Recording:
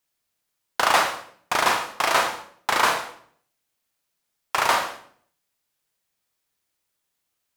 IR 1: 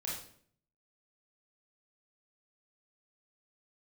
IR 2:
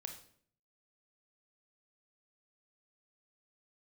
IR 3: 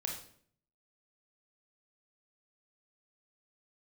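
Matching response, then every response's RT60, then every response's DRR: 2; 0.60, 0.60, 0.60 s; -5.5, 4.5, 0.0 dB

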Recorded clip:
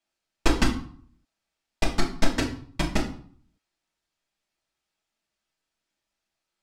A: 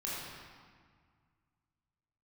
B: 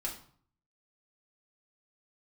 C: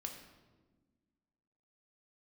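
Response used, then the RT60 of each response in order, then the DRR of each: B; 1.8, 0.50, 1.3 s; -7.5, -3.5, 2.5 dB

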